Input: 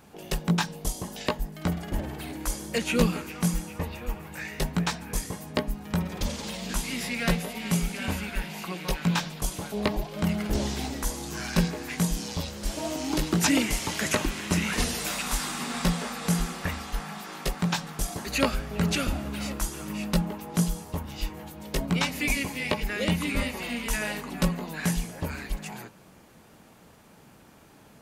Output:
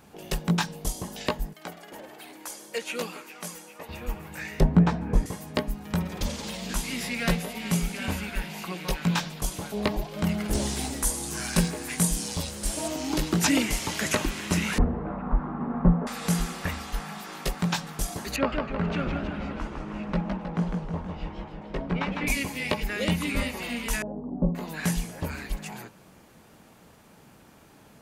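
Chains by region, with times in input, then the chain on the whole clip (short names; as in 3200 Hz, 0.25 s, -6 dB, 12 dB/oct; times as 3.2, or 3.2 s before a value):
1.53–3.89 HPF 380 Hz + flange 1.2 Hz, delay 0.8 ms, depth 1.4 ms, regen +75%
4.6–5.26 LPF 3600 Hz 6 dB/oct + tilt shelf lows +9.5 dB, about 1400 Hz
10.48–12.88 bell 9300 Hz +12 dB 0.67 oct + modulation noise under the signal 34 dB
14.78–16.07 CVSD 64 kbps + LPF 1200 Hz 24 dB/oct + low shelf 360 Hz +8 dB
18.36–22.27 LPF 1800 Hz + low shelf 200 Hz -5 dB + warbling echo 0.159 s, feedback 57%, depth 198 cents, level -4.5 dB
24.02–24.55 inverse Chebyshev low-pass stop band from 1900 Hz, stop band 50 dB + bell 250 Hz +7 dB 0.22 oct
whole clip: dry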